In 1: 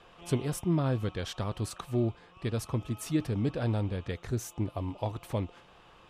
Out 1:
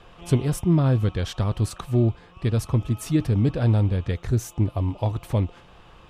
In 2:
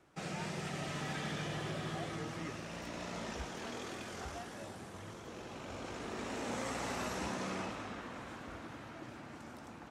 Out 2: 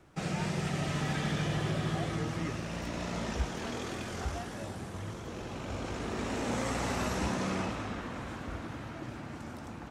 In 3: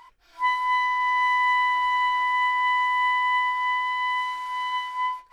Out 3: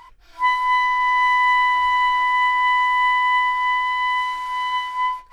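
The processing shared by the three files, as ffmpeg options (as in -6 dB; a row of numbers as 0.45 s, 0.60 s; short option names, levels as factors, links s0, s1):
-af "lowshelf=f=150:g=10.5,volume=1.68"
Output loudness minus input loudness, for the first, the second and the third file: +9.0 LU, +6.5 LU, +4.5 LU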